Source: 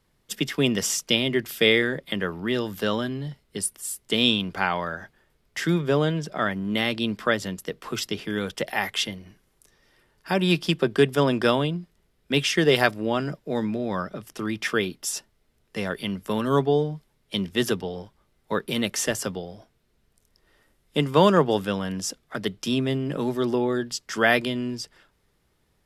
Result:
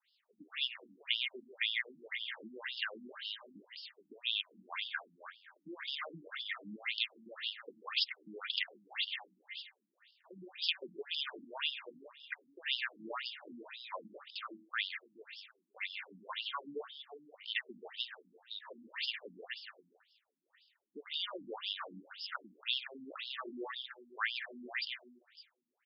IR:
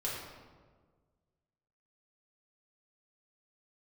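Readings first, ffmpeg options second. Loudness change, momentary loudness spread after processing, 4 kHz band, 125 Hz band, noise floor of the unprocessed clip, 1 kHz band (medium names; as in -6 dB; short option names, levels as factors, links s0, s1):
-15.0 dB, 16 LU, -8.5 dB, under -35 dB, -68 dBFS, -18.5 dB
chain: -filter_complex "[0:a]aresample=11025,aresample=44100,asplit=2[s0][s1];[s1]aecho=0:1:135|423:0.1|0.211[s2];[s0][s2]amix=inputs=2:normalize=0,alimiter=limit=0.168:level=0:latency=1:release=232,aderivative,bandreject=f=77.88:t=h:w=4,bandreject=f=155.76:t=h:w=4,bandreject=f=233.64:t=h:w=4,bandreject=f=311.52:t=h:w=4,bandreject=f=389.4:t=h:w=4,bandreject=f=467.28:t=h:w=4,bandreject=f=545.16:t=h:w=4,bandreject=f=623.04:t=h:w=4,bandreject=f=700.92:t=h:w=4,bandreject=f=778.8:t=h:w=4,bandreject=f=856.68:t=h:w=4,bandreject=f=934.56:t=h:w=4,bandreject=f=1012.44:t=h:w=4,bandreject=f=1090.32:t=h:w=4,bandreject=f=1168.2:t=h:w=4,bandreject=f=1246.08:t=h:w=4,bandreject=f=1323.96:t=h:w=4,bandreject=f=1401.84:t=h:w=4,bandreject=f=1479.72:t=h:w=4,bandreject=f=1557.6:t=h:w=4,bandreject=f=1635.48:t=h:w=4,bandreject=f=1713.36:t=h:w=4,bandreject=f=1791.24:t=h:w=4,bandreject=f=1869.12:t=h:w=4,bandreject=f=1947:t=h:w=4,bandreject=f=2024.88:t=h:w=4,bandreject=f=2102.76:t=h:w=4,bandreject=f=2180.64:t=h:w=4,bandreject=f=2258.52:t=h:w=4,adynamicequalizer=threshold=0.00141:dfrequency=2100:dqfactor=2:tfrequency=2100:tqfactor=2:attack=5:release=100:ratio=0.375:range=3.5:mode=boostabove:tftype=bell,asplit=2[s3][s4];[s4]aecho=0:1:160|320|480|640:0.224|0.101|0.0453|0.0204[s5];[s3][s5]amix=inputs=2:normalize=0,acompressor=threshold=0.01:ratio=6,afftfilt=real='re*between(b*sr/1024,220*pow(4000/220,0.5+0.5*sin(2*PI*1.9*pts/sr))/1.41,220*pow(4000/220,0.5+0.5*sin(2*PI*1.9*pts/sr))*1.41)':imag='im*between(b*sr/1024,220*pow(4000/220,0.5+0.5*sin(2*PI*1.9*pts/sr))/1.41,220*pow(4000/220,0.5+0.5*sin(2*PI*1.9*pts/sr))*1.41)':win_size=1024:overlap=0.75,volume=3.76"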